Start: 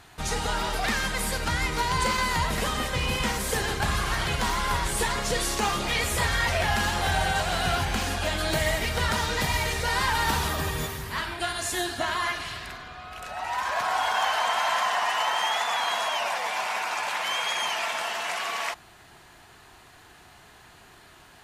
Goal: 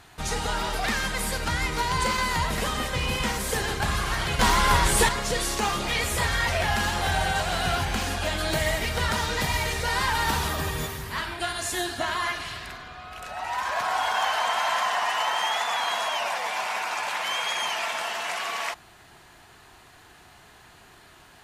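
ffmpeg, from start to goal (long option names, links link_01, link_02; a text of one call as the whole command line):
ffmpeg -i in.wav -filter_complex "[0:a]asettb=1/sr,asplit=3[link_01][link_02][link_03];[link_01]atrim=end=4.394[link_04];[link_02]atrim=start=4.39:end=5.09,asetpts=PTS-STARTPTS,afade=type=in:duration=0.004:curve=qsin,afade=type=out:start_time=0.696:duration=0.004:curve=qsin,acontrast=61[link_05];[link_03]atrim=start=5.086[link_06];[link_04][link_05]acrossfade=duration=0.004:curve1=hsin:curve2=qsin[link_07];[link_07][link_06]acrossfade=duration=0.004:curve1=qsin:curve2=hsin" out.wav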